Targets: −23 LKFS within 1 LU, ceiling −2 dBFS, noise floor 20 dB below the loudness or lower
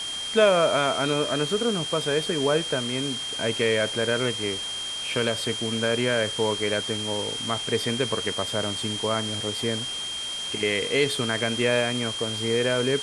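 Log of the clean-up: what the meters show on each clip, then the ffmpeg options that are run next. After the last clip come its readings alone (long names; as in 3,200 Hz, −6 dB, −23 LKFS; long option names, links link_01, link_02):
interfering tone 3,200 Hz; level of the tone −30 dBFS; background noise floor −32 dBFS; target noise floor −45 dBFS; integrated loudness −24.5 LKFS; sample peak −7.5 dBFS; target loudness −23.0 LKFS
→ -af "bandreject=frequency=3200:width=30"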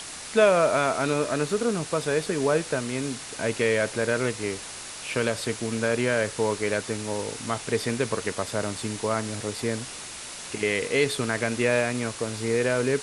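interfering tone none found; background noise floor −39 dBFS; target noise floor −46 dBFS
→ -af "afftdn=noise_reduction=7:noise_floor=-39"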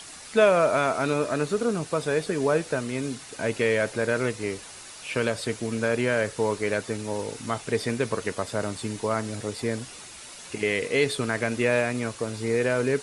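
background noise floor −44 dBFS; target noise floor −47 dBFS
→ -af "afftdn=noise_reduction=6:noise_floor=-44"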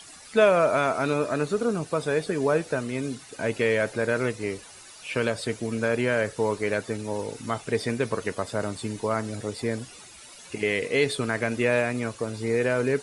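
background noise floor −47 dBFS; integrated loudness −26.5 LKFS; sample peak −8.0 dBFS; target loudness −23.0 LKFS
→ -af "volume=3.5dB"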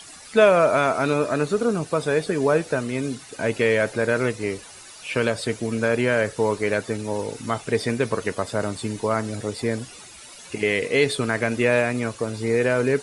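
integrated loudness −23.0 LKFS; sample peak −4.5 dBFS; background noise floor −44 dBFS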